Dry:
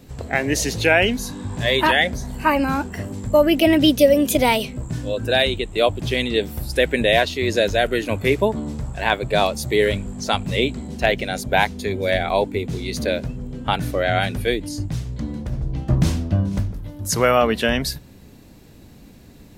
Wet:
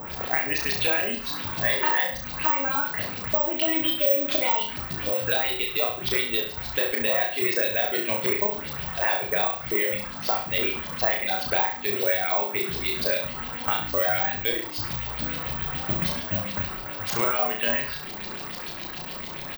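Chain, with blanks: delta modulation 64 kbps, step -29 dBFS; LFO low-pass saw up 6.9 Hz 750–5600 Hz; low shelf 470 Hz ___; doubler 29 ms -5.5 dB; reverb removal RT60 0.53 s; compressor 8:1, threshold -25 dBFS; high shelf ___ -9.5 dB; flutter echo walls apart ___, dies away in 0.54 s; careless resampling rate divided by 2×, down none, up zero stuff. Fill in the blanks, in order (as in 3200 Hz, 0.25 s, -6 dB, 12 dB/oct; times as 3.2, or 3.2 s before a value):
-11 dB, 10000 Hz, 5.9 m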